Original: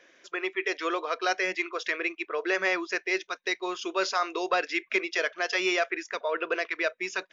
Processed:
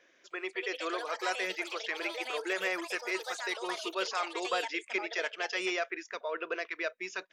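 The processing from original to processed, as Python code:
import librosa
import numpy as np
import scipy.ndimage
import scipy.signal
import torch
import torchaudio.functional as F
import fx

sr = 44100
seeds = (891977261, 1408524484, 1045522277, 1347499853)

y = fx.echo_pitch(x, sr, ms=305, semitones=5, count=3, db_per_echo=-6.0)
y = y * librosa.db_to_amplitude(-6.5)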